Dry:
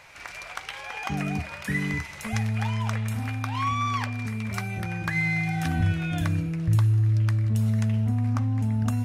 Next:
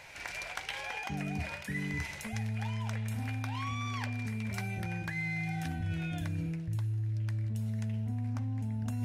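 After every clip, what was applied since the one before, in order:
parametric band 1,200 Hz −9.5 dB 0.3 octaves
reversed playback
downward compressor 5 to 1, threshold −33 dBFS, peak gain reduction 14 dB
reversed playback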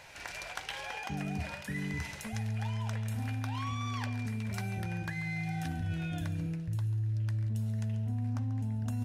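parametric band 2,200 Hz −5.5 dB 0.3 octaves
single-tap delay 139 ms −14 dB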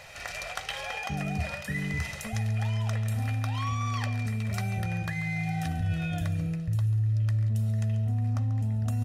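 comb filter 1.6 ms, depth 51%
level +4 dB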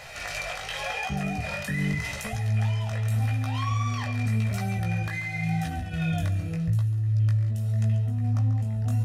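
brickwall limiter −25.5 dBFS, peak gain reduction 10 dB
chorus effect 0.86 Hz, delay 15.5 ms, depth 5.9 ms
level +8 dB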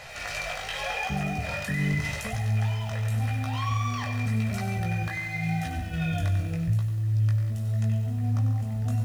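high-shelf EQ 10,000 Hz −4 dB
feedback echo at a low word length 95 ms, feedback 55%, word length 8 bits, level −9 dB

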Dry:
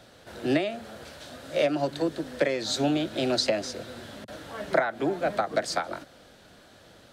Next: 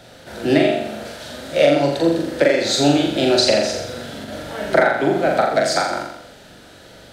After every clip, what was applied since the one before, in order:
notch filter 1,100 Hz, Q 8
flutter between parallel walls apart 7.2 metres, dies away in 0.77 s
level +7.5 dB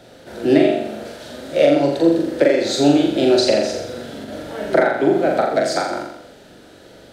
parametric band 360 Hz +7.5 dB 1.5 octaves
level −4 dB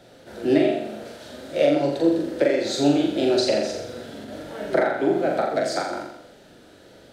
flanger 1.1 Hz, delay 5 ms, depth 6.3 ms, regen −66%
level −1 dB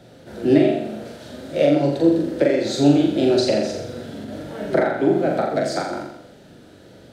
parametric band 130 Hz +8.5 dB 2.4 octaves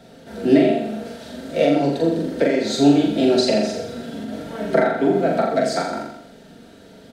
mains-hum notches 50/100/150/200/250/300/350/400/450/500 Hz
comb filter 4.4 ms, depth 56%
level +1 dB

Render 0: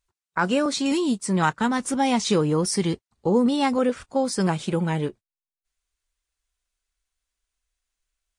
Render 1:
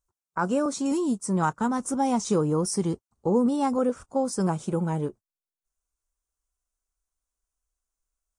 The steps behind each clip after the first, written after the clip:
flat-topped bell 2,800 Hz −12.5 dB
level −2.5 dB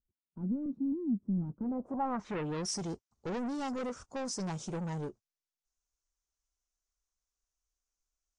soft clipping −28.5 dBFS, distortion −8 dB
low-pass filter sweep 240 Hz → 5,900 Hz, 0:01.49–0:02.70
level −5 dB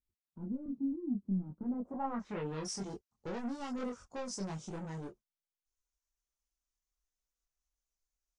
transient designer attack +2 dB, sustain −3 dB
multi-voice chorus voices 4, 0.49 Hz, delay 23 ms, depth 3 ms
level −1 dB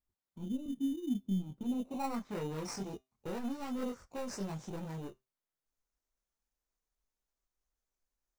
in parallel at −4 dB: sample-rate reduction 3,300 Hz, jitter 0%
on the sum: tuned comb filter 130 Hz, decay 0.24 s, harmonics all, mix 40%

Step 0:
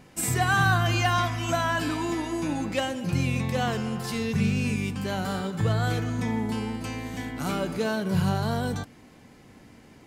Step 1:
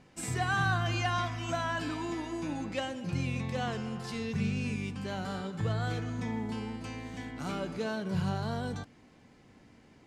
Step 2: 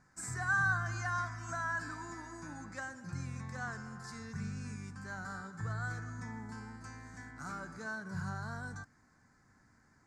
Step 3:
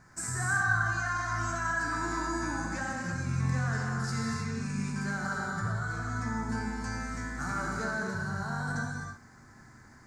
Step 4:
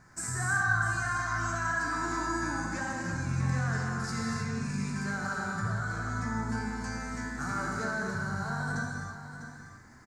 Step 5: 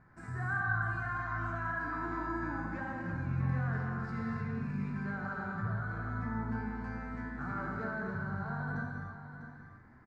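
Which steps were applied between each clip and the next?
low-pass filter 7,400 Hz 12 dB per octave; level −7 dB
drawn EQ curve 110 Hz 0 dB, 500 Hz −10 dB, 1,600 Hz +9 dB, 3,000 Hz −20 dB, 4,600 Hz −1 dB, 7,200 Hz +6 dB, 11,000 Hz −3 dB; level −6.5 dB
in parallel at +0.5 dB: compressor whose output falls as the input rises −44 dBFS, ratio −0.5; on the sum: reverb whose tail is shaped and stops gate 350 ms flat, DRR −1.5 dB
single-tap delay 649 ms −11 dB
high-frequency loss of the air 490 metres; level −2.5 dB

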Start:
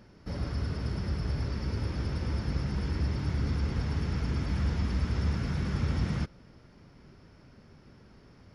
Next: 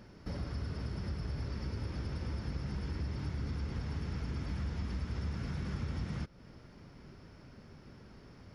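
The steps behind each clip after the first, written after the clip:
downward compressor 2.5 to 1, threshold −39 dBFS, peak gain reduction 10.5 dB
level +1 dB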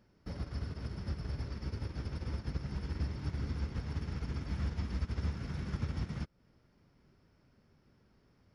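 expander for the loud parts 2.5 to 1, over −45 dBFS
level +4 dB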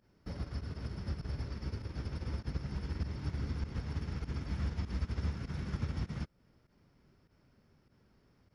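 fake sidechain pumping 99 BPM, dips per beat 1, −15 dB, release 68 ms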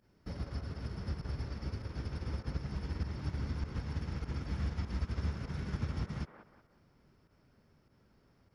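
delay with a band-pass on its return 183 ms, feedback 37%, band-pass 830 Hz, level −4 dB

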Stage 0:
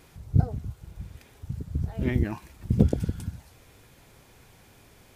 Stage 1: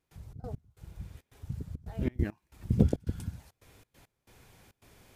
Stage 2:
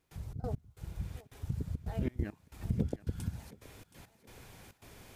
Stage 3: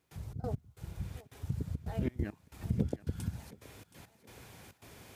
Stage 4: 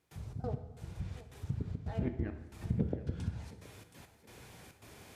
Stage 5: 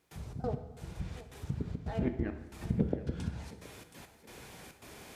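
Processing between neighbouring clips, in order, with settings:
gate pattern ".xx.x..xxxx.xxxx" 137 BPM −24 dB; level −3.5 dB
downward compressor 4 to 1, threshold −35 dBFS, peak gain reduction 16 dB; feedback echo with a high-pass in the loop 723 ms, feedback 58%, high-pass 390 Hz, level −15.5 dB; level +4.5 dB
high-pass filter 61 Hz; level +1 dB
treble cut that deepens with the level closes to 2,300 Hz, closed at −29 dBFS; dense smooth reverb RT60 1.1 s, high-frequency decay 0.75×, DRR 7.5 dB; level −1 dB
parametric band 100 Hz −7.5 dB 0.82 octaves; level +4.5 dB

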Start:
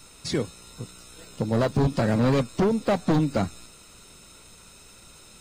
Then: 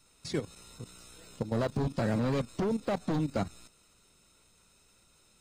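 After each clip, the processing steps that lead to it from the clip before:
output level in coarse steps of 12 dB
level −4.5 dB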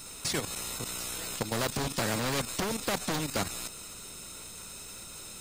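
high-shelf EQ 8,900 Hz +10.5 dB
every bin compressed towards the loudest bin 2 to 1
level +5.5 dB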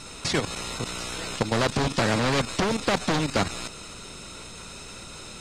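high-frequency loss of the air 87 metres
level +8 dB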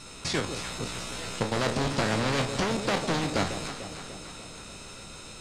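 peak hold with a decay on every bin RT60 0.32 s
delay that swaps between a low-pass and a high-pass 148 ms, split 820 Hz, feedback 77%, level −8 dB
level −5 dB

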